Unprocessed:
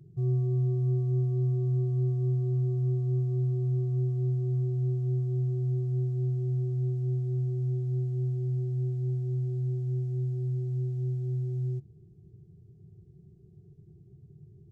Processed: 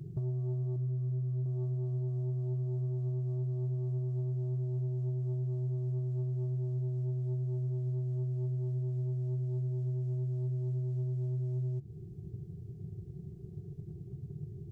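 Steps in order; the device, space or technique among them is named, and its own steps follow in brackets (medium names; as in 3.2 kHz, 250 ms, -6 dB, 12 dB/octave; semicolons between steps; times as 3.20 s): 0.76–1.46 s: FFT filter 220 Hz 0 dB, 580 Hz -16 dB, 910 Hz -4 dB; drum-bus smash (transient shaper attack +4 dB, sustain 0 dB; compression 16:1, threshold -38 dBFS, peak gain reduction 16 dB; saturation -36.5 dBFS, distortion -22 dB); trim +8.5 dB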